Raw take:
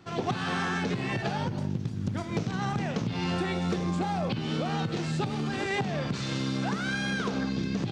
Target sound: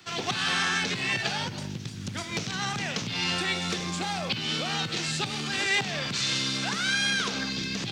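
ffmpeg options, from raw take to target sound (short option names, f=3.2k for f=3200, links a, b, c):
-filter_complex "[0:a]tiltshelf=f=1.2k:g=-5.5,acrossover=split=200|400|1800[a][b][c][d];[d]acontrast=75[e];[a][b][c][e]amix=inputs=4:normalize=0"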